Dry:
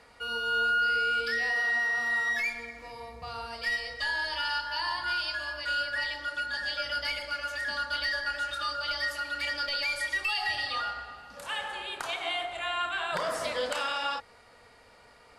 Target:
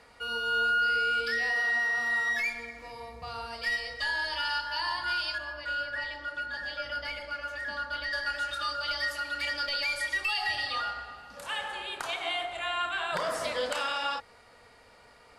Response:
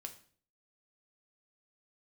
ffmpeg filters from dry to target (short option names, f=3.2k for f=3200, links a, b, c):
-filter_complex "[0:a]asettb=1/sr,asplit=3[a][b][c];[a]atrim=end=5.384[d];[b]atrim=start=5.38:end=8.13,asetpts=PTS-STARTPTS,afade=t=in:d=0.004:c=qsin,afade=t=out:st=2.746:d=0.004:c=qsin,highshelf=f=3k:g=-11.5[e];[c]atrim=start=8.126[f];[d][e]acrossfade=d=0.004:c1=hsin:c2=qsin[g];[g][f]acrossfade=d=0.004:c1=qsin:c2=hsin"